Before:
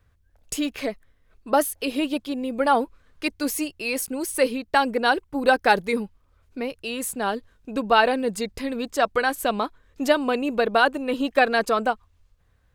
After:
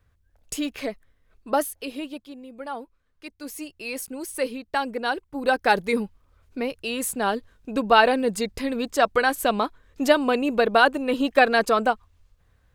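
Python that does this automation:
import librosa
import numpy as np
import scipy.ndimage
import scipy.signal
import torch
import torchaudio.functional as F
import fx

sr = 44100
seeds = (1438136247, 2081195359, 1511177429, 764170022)

y = fx.gain(x, sr, db=fx.line((1.5, -2.0), (2.47, -14.0), (3.28, -14.0), (3.8, -5.5), (5.26, -5.5), (6.0, 1.5)))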